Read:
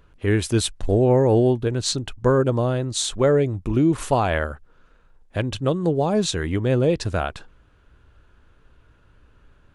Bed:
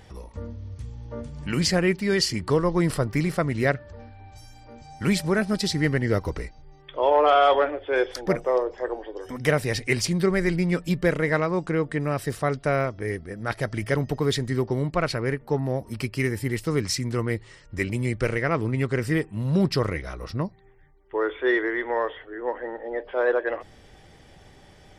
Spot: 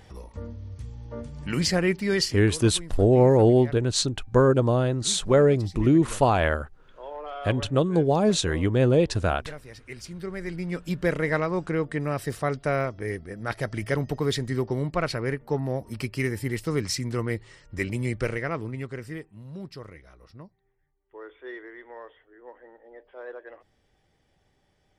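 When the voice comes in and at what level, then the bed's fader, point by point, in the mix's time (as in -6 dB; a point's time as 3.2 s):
2.10 s, -0.5 dB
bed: 2.23 s -1.5 dB
2.51 s -19 dB
9.78 s -19 dB
11.12 s -2 dB
18.18 s -2 dB
19.55 s -17.5 dB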